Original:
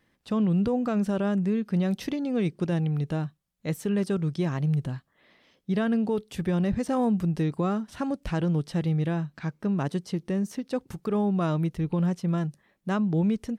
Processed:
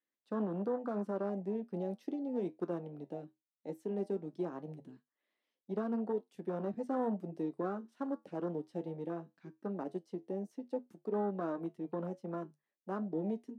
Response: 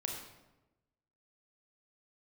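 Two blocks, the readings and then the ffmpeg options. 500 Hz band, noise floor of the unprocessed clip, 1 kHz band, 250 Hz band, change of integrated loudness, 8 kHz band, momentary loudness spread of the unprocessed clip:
−6.5 dB, −71 dBFS, −8.0 dB, −13.0 dB, −11.5 dB, below −20 dB, 7 LU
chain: -filter_complex "[0:a]aeval=exprs='0.15*(cos(1*acos(clip(val(0)/0.15,-1,1)))-cos(1*PI/2))+0.0211*(cos(3*acos(clip(val(0)/0.15,-1,1)))-cos(3*PI/2))':channel_layout=same,acrossover=split=510[link_01][link_02];[link_02]asoftclip=type=tanh:threshold=-30.5dB[link_03];[link_01][link_03]amix=inputs=2:normalize=0,afwtdn=0.0178,highpass=frequency=250:width=0.5412,highpass=frequency=250:width=1.3066,flanger=delay=9.8:depth=1.4:regen=-67:speed=0.17:shape=sinusoidal"

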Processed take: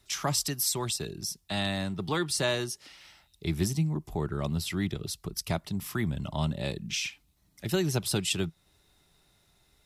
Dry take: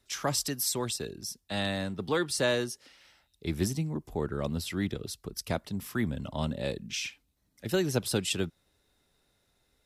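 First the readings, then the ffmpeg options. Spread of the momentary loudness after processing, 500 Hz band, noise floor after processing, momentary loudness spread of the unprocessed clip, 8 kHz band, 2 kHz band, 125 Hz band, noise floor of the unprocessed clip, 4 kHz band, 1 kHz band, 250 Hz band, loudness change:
8 LU, −2.0 dB, −68 dBFS, 9 LU, +2.0 dB, 0.0 dB, +3.5 dB, −73 dBFS, +2.0 dB, +1.0 dB, +0.5 dB, +1.0 dB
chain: -filter_complex "[0:a]equalizer=frequency=160:width_type=o:width=0.33:gain=4,equalizer=frequency=250:width_type=o:width=0.33:gain=-7,equalizer=frequency=500:width_type=o:width=0.33:gain=-10,equalizer=frequency=1600:width_type=o:width=0.33:gain=-4,asplit=2[link_01][link_02];[link_02]acompressor=threshold=-42dB:ratio=6,volume=1dB[link_03];[link_01][link_03]amix=inputs=2:normalize=0"

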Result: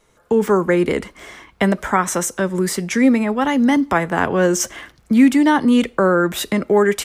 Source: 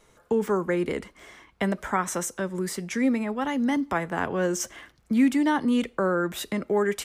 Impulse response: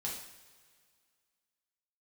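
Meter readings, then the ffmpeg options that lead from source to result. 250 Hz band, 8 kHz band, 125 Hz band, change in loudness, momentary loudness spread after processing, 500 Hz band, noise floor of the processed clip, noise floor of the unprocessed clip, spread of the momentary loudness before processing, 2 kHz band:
+9.0 dB, +9.0 dB, +9.5 dB, +9.0 dB, 7 LU, +9.0 dB, −56 dBFS, −61 dBFS, 8 LU, +9.0 dB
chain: -af "dynaudnorm=framelen=190:gausssize=3:maxgain=10dB"

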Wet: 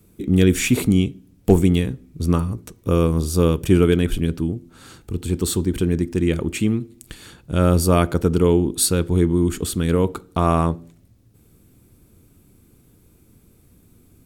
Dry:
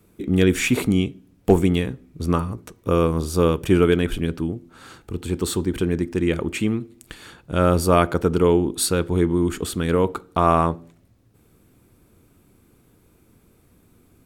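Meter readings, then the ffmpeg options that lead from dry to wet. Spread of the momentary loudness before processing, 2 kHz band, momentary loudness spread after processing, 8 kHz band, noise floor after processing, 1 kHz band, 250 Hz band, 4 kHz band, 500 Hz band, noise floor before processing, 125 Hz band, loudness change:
11 LU, −2.0 dB, 10 LU, +4.0 dB, −55 dBFS, −3.5 dB, +2.0 dB, +1.0 dB, −0.5 dB, −58 dBFS, +4.0 dB, +1.5 dB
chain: -af "equalizer=frequency=1100:width=0.34:gain=-8.5,volume=5dB"

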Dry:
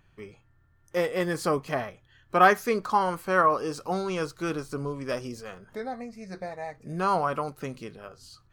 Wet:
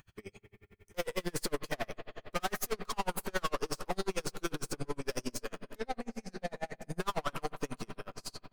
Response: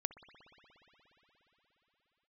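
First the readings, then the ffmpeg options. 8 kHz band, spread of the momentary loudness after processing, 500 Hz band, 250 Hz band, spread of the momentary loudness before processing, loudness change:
+2.5 dB, 9 LU, −10.0 dB, −8.5 dB, 18 LU, −11.0 dB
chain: -filter_complex "[0:a]highshelf=frequency=3200:gain=11.5,aeval=exprs='(tanh(44.7*val(0)+0.45)-tanh(0.45))/44.7':channel_layout=same[link_01];[1:a]atrim=start_sample=2205[link_02];[link_01][link_02]afir=irnorm=-1:irlink=0,aeval=exprs='val(0)*pow(10,-36*(0.5-0.5*cos(2*PI*11*n/s))/20)':channel_layout=same,volume=7dB"

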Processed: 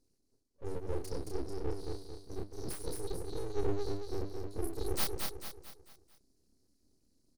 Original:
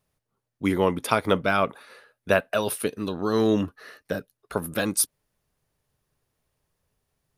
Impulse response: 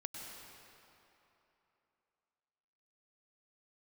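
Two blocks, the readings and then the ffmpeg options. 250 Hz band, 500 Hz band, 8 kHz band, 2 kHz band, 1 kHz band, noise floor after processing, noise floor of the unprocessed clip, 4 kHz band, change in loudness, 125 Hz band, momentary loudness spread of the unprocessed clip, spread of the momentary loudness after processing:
−16.0 dB, −13.0 dB, −14.5 dB, −22.5 dB, −18.5 dB, −75 dBFS, −83 dBFS, −11.0 dB, −14.5 dB, −8.5 dB, 11 LU, 12 LU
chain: -filter_complex "[0:a]highpass=110,lowpass=6500,equalizer=frequency=3300:width=0.35:gain=-6,bandreject=frequency=50:width_type=h:width=6,bandreject=frequency=100:width_type=h:width=6,bandreject=frequency=150:width_type=h:width=6,bandreject=frequency=200:width_type=h:width=6,areverse,acompressor=threshold=-38dB:ratio=4,areverse,afftfilt=real='re*(1-between(b*sr/4096,280,4000))':imag='im*(1-between(b*sr/4096,280,4000))':win_size=4096:overlap=0.75,asplit=2[link_01][link_02];[link_02]adelay=30,volume=-3dB[link_03];[link_01][link_03]amix=inputs=2:normalize=0,aecho=1:1:222|444|666|888|1110:0.631|0.271|0.117|0.0502|0.0216,aeval=exprs='abs(val(0))':channel_layout=same,volume=9dB"

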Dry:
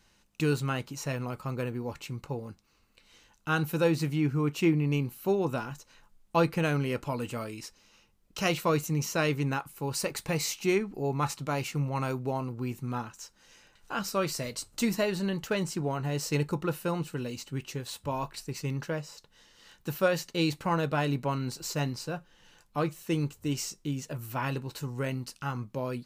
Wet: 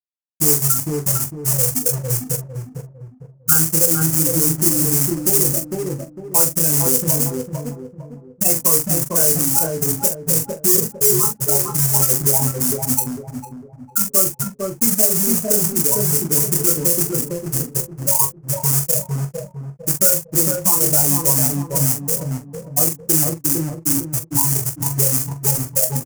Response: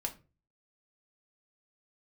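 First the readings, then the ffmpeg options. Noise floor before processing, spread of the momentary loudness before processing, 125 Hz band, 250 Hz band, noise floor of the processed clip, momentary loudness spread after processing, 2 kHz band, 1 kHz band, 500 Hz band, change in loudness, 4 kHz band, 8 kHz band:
−65 dBFS, 10 LU, +9.0 dB, +7.0 dB, −45 dBFS, 12 LU, +0.5 dB, +4.0 dB, +6.5 dB, +15.5 dB, +8.5 dB, +24.5 dB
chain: -filter_complex "[0:a]highpass=frequency=56:poles=1,afftfilt=real='re*gte(hypot(re,im),0.178)':imag='im*gte(hypot(re,im),0.178)':win_size=1024:overlap=0.75,adynamicequalizer=threshold=0.00355:dfrequency=420:dqfactor=6.9:tfrequency=420:tqfactor=6.9:attack=5:release=100:ratio=0.375:range=1.5:mode=boostabove:tftype=bell,acompressor=threshold=-34dB:ratio=4,flanger=delay=20:depth=5.4:speed=0.15,acrusher=bits=2:mode=log:mix=0:aa=0.000001,volume=28.5dB,asoftclip=hard,volume=-28.5dB,aexciter=amount=13.6:drive=8:freq=5700,asplit=2[link_01][link_02];[link_02]adelay=43,volume=-10.5dB[link_03];[link_01][link_03]amix=inputs=2:normalize=0,asplit=2[link_04][link_05];[link_05]adelay=453,lowpass=frequency=930:poles=1,volume=-4dB,asplit=2[link_06][link_07];[link_07]adelay=453,lowpass=frequency=930:poles=1,volume=0.4,asplit=2[link_08][link_09];[link_09]adelay=453,lowpass=frequency=930:poles=1,volume=0.4,asplit=2[link_10][link_11];[link_11]adelay=453,lowpass=frequency=930:poles=1,volume=0.4,asplit=2[link_12][link_13];[link_13]adelay=453,lowpass=frequency=930:poles=1,volume=0.4[link_14];[link_06][link_08][link_10][link_12][link_14]amix=inputs=5:normalize=0[link_15];[link_04][link_15]amix=inputs=2:normalize=0,alimiter=level_in=19.5dB:limit=-1dB:release=50:level=0:latency=1,volume=-1dB"

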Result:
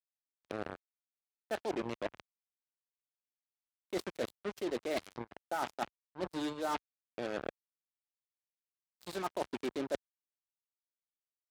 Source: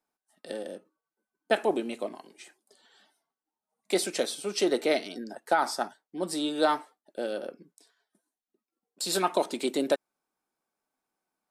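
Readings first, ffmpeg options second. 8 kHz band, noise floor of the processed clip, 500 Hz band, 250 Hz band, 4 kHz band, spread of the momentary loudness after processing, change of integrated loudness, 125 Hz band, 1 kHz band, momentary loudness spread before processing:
−16.5 dB, below −85 dBFS, −9.5 dB, −8.5 dB, −13.0 dB, 9 LU, −10.0 dB, −3.0 dB, −9.5 dB, 13 LU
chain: -af "lowpass=frequency=3500:poles=1,aeval=exprs='val(0)+0.001*(sin(2*PI*60*n/s)+sin(2*PI*2*60*n/s)/2+sin(2*PI*3*60*n/s)/3+sin(2*PI*4*60*n/s)/4+sin(2*PI*5*60*n/s)/5)':channel_layout=same,aemphasis=mode=reproduction:type=50kf,acrusher=bits=4:mix=0:aa=0.5,areverse,acompressor=threshold=-36dB:ratio=6,areverse,highpass=55,volume=2.5dB"

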